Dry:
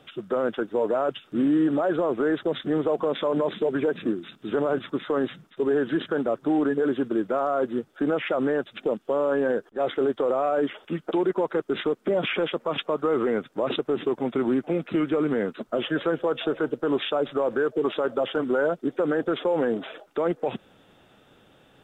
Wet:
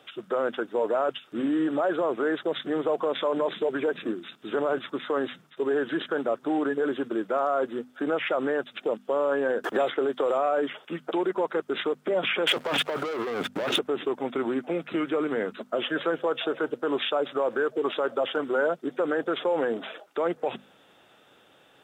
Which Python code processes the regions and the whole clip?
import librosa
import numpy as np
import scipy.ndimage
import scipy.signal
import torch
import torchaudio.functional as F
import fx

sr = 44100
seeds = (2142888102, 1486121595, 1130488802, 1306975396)

y = fx.chain(x, sr, fx.highpass(hz=41.0, slope=12),
    fx.band_squash(depth_pct=100), at=(9.64, 10.38))
y = fx.chain(y, sr, fx.notch(hz=1100.0, q=8.7),
    fx.leveller(passes=3),
    fx.over_compress(threshold_db=-26.0, ratio=-1.0), at=(12.47, 13.79))
y = scipy.signal.sosfilt(scipy.signal.butter(2, 59.0, 'highpass', fs=sr, output='sos'), y)
y = fx.low_shelf(y, sr, hz=290.0, db=-12.0)
y = fx.hum_notches(y, sr, base_hz=50, count=5)
y = y * 10.0 ** (1.5 / 20.0)